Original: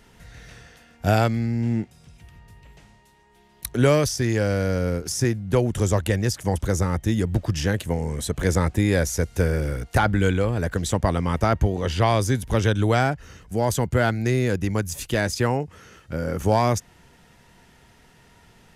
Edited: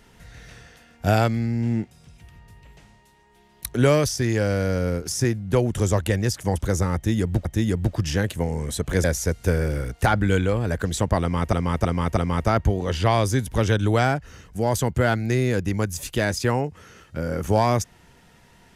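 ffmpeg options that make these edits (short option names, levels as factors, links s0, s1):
-filter_complex "[0:a]asplit=6[s0][s1][s2][s3][s4][s5];[s0]atrim=end=7.452[s6];[s1]atrim=start=6.948:end=8.542[s7];[s2]atrim=start=8.958:end=11.452[s8];[s3]atrim=start=11.128:end=11.452[s9];[s4]atrim=start=11.128:end=11.452[s10];[s5]atrim=start=11.128[s11];[s6][s7]acrossfade=d=0.004:c1=hsin:c2=hsin[s12];[s12][s8]acrossfade=d=0.004:c1=hsin:c2=hsin[s13];[s13][s9]acrossfade=d=0.004:c1=hsin:c2=hsin[s14];[s14][s10]acrossfade=d=0.004:c1=hsin:c2=hsin[s15];[s15][s11]acrossfade=d=0.004:c1=hsin:c2=hsin"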